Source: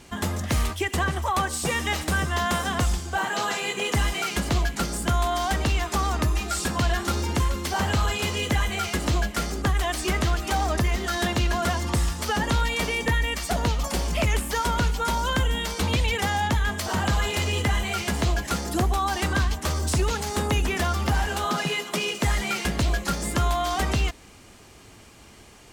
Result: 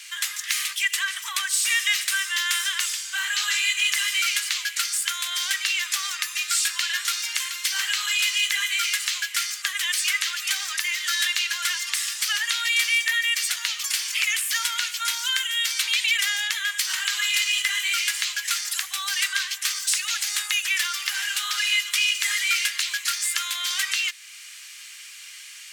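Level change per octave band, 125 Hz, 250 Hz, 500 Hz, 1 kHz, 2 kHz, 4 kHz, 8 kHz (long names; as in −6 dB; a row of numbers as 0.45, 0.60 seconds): below −40 dB, below −40 dB, below −35 dB, −10.0 dB, +5.0 dB, +8.0 dB, +8.0 dB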